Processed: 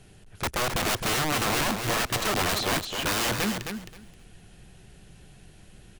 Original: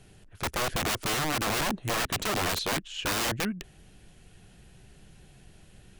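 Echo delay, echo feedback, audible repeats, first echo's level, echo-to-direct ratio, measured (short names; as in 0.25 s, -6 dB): 0.264 s, 17%, 2, -6.5 dB, -6.5 dB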